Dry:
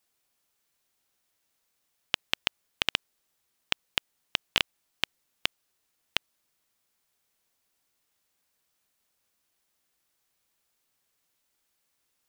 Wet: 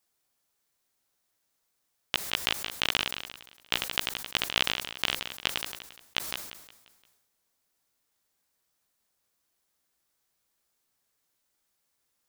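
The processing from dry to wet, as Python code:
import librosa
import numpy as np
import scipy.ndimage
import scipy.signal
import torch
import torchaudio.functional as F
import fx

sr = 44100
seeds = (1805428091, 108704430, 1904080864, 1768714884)

p1 = fx.peak_eq(x, sr, hz=2700.0, db=-3.5, octaves=0.77)
p2 = fx.doubler(p1, sr, ms=16.0, db=-12.0)
p3 = p2 + fx.echo_feedback(p2, sr, ms=174, feedback_pct=57, wet_db=-17.5, dry=0)
p4 = fx.sustainer(p3, sr, db_per_s=52.0)
y = p4 * librosa.db_to_amplitude(-1.0)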